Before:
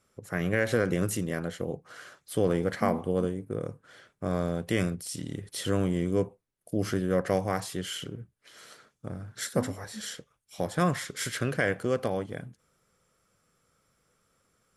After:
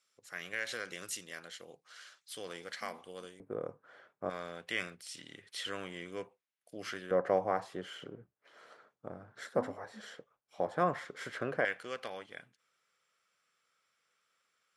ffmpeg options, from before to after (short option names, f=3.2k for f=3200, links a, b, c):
-af "asetnsamples=n=441:p=0,asendcmd='3.4 bandpass f 840;4.3 bandpass f 2400;7.11 bandpass f 770;11.65 bandpass f 2700',bandpass=f=4.2k:t=q:w=0.95:csg=0"